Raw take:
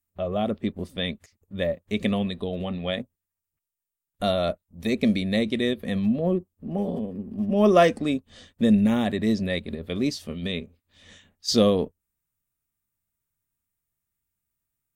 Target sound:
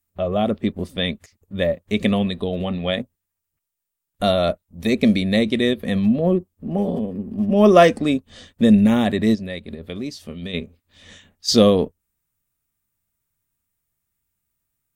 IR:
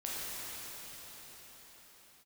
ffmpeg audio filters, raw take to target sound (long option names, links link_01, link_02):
-filter_complex "[0:a]asplit=3[link_01][link_02][link_03];[link_01]afade=type=out:start_time=9.34:duration=0.02[link_04];[link_02]acompressor=threshold=-39dB:ratio=2,afade=type=in:start_time=9.34:duration=0.02,afade=type=out:start_time=10.53:duration=0.02[link_05];[link_03]afade=type=in:start_time=10.53:duration=0.02[link_06];[link_04][link_05][link_06]amix=inputs=3:normalize=0,volume=5.5dB"